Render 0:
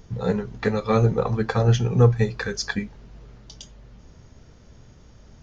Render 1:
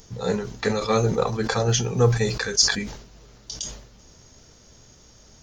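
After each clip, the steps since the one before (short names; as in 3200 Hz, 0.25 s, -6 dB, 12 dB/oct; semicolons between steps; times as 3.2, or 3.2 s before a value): tone controls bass -6 dB, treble +14 dB; sustainer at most 79 dB/s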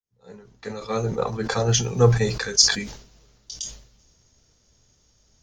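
opening faded in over 1.57 s; three-band expander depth 40%; gain -1 dB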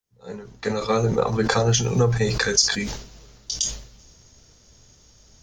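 compressor 6:1, threshold -25 dBFS, peak gain reduction 14.5 dB; gain +8.5 dB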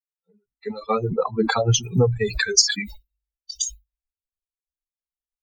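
per-bin expansion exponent 3; gain +5.5 dB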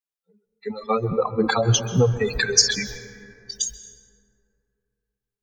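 plate-style reverb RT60 2.7 s, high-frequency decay 0.35×, pre-delay 0.12 s, DRR 12 dB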